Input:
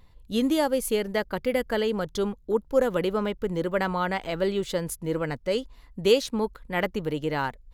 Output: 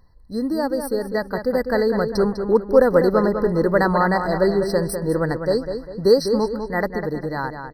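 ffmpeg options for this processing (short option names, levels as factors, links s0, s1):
-filter_complex "[0:a]dynaudnorm=f=450:g=7:m=3.76,asplit=2[s0][s1];[s1]adelay=200,lowpass=f=4700:p=1,volume=0.422,asplit=2[s2][s3];[s3]adelay=200,lowpass=f=4700:p=1,volume=0.4,asplit=2[s4][s5];[s5]adelay=200,lowpass=f=4700:p=1,volume=0.4,asplit=2[s6][s7];[s7]adelay=200,lowpass=f=4700:p=1,volume=0.4,asplit=2[s8][s9];[s9]adelay=200,lowpass=f=4700:p=1,volume=0.4[s10];[s0][s2][s4][s6][s8][s10]amix=inputs=6:normalize=0,afftfilt=real='re*eq(mod(floor(b*sr/1024/2000),2),0)':imag='im*eq(mod(floor(b*sr/1024/2000),2),0)':win_size=1024:overlap=0.75"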